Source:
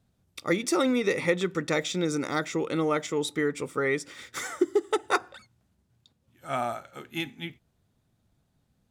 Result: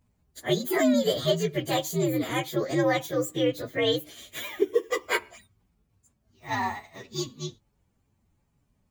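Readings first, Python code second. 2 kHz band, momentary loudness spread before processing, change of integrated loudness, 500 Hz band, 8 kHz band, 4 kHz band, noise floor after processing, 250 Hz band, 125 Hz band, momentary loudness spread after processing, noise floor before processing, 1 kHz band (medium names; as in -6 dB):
-1.0 dB, 13 LU, +1.0 dB, +1.5 dB, 0.0 dB, +4.0 dB, -72 dBFS, +1.0 dB, +4.0 dB, 13 LU, -73 dBFS, -0.5 dB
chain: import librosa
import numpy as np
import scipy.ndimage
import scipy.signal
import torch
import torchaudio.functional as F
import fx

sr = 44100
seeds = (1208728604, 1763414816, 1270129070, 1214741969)

y = fx.partial_stretch(x, sr, pct=125)
y = F.gain(torch.from_numpy(y), 4.0).numpy()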